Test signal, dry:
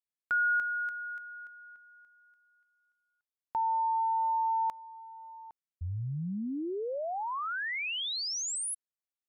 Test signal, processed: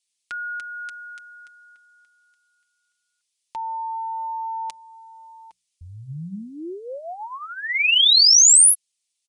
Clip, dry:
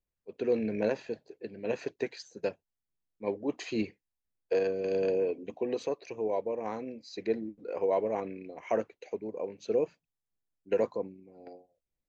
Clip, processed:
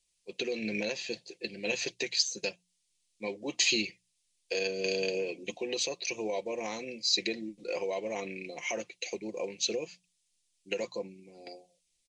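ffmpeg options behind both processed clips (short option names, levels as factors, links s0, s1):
-af "bandreject=f=60:t=h:w=6,bandreject=f=120:t=h:w=6,bandreject=f=180:t=h:w=6,aecho=1:1:5.7:0.47,alimiter=level_in=1.19:limit=0.0631:level=0:latency=1:release=280,volume=0.841,aexciter=amount=9.5:drive=3.9:freq=2200,aresample=22050,aresample=44100"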